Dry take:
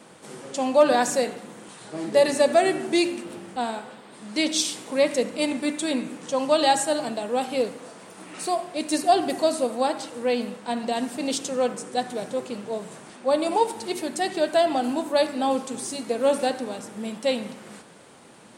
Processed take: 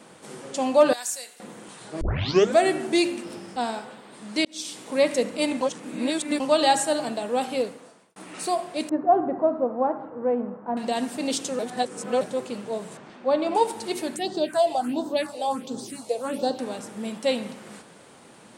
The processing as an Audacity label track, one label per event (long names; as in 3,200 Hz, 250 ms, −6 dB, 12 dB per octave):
0.930000	1.400000	first difference
2.010000	2.010000	tape start 0.57 s
3.230000	3.850000	parametric band 5,200 Hz +13 dB 0.2 octaves
4.450000	4.950000	fade in linear
5.610000	6.400000	reverse
7.490000	8.160000	fade out
8.890000	10.770000	low-pass filter 1,300 Hz 24 dB per octave
11.590000	12.210000	reverse
12.970000	13.550000	high-frequency loss of the air 150 metres
14.160000	16.590000	all-pass phaser stages 4, 1.4 Hz, lowest notch 230–2,300 Hz